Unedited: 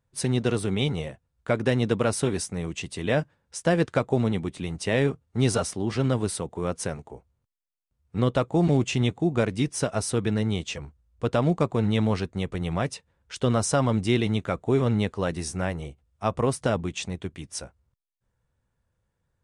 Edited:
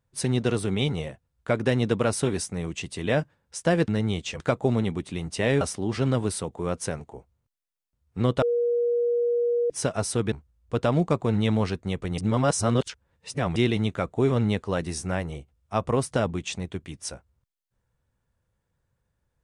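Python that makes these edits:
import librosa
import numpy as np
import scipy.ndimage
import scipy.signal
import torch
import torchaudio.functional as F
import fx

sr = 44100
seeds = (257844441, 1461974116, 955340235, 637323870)

y = fx.edit(x, sr, fx.cut(start_s=5.09, length_s=0.5),
    fx.bleep(start_s=8.4, length_s=1.28, hz=477.0, db=-20.5),
    fx.move(start_s=10.3, length_s=0.52, to_s=3.88),
    fx.reverse_span(start_s=12.68, length_s=1.38), tone=tone)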